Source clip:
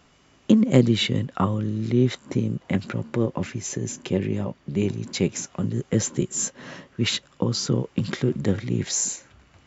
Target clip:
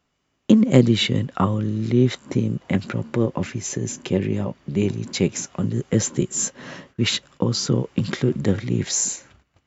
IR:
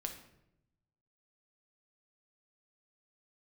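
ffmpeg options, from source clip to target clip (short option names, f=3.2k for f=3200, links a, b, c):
-af "agate=range=-17dB:threshold=-50dB:ratio=16:detection=peak,volume=2.5dB"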